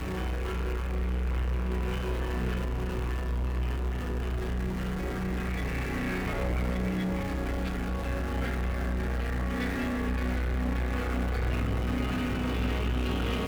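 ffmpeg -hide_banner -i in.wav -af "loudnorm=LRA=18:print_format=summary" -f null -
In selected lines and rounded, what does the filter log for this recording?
Input Integrated:    -31.2 LUFS
Input True Peak:     -19.2 dBTP
Input LRA:             2.0 LU
Input Threshold:     -41.2 LUFS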